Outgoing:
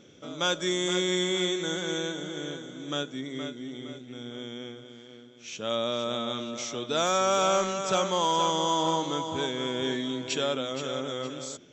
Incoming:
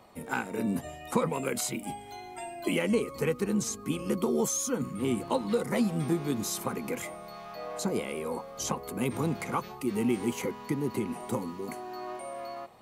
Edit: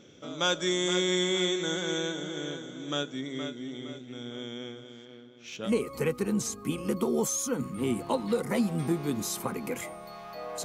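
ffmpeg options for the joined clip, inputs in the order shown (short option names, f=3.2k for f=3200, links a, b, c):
-filter_complex "[0:a]asettb=1/sr,asplit=3[a][b][c];[a]atrim=end=5.054[d];[b]atrim=start=5.05:end=5.71,asetpts=PTS-STARTPTS,afade=t=in:d=0.004:c=qsin,afade=t=out:st=0.656:d=0.004:c=qsin,adynamicsmooth=sensitivity=4.5:basefreq=5.1k[e];[c]atrim=start=5.706[f];[d][e]acrossfade=d=0.004:c1=hsin:c2=qsin[g];[g][f]acrossfade=d=0.004:c1=qsin:c2=hsin,apad=whole_dur=10.64,atrim=end=10.64,atrim=end=5.71,asetpts=PTS-STARTPTS[h];[1:a]atrim=start=2.84:end=7.85,asetpts=PTS-STARTPTS[i];[h][i]acrossfade=d=0.08:c1=tri:c2=tri"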